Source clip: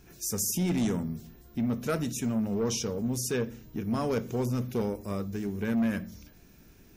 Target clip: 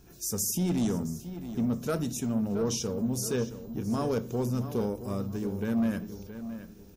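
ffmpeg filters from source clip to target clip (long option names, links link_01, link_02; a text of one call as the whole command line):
ffmpeg -i in.wav -filter_complex "[0:a]equalizer=frequency=2100:width=1.7:gain=-7.5,asplit=2[link_01][link_02];[link_02]adelay=671,lowpass=frequency=4000:poles=1,volume=-11.5dB,asplit=2[link_03][link_04];[link_04]adelay=671,lowpass=frequency=4000:poles=1,volume=0.32,asplit=2[link_05][link_06];[link_06]adelay=671,lowpass=frequency=4000:poles=1,volume=0.32[link_07];[link_01][link_03][link_05][link_07]amix=inputs=4:normalize=0" out.wav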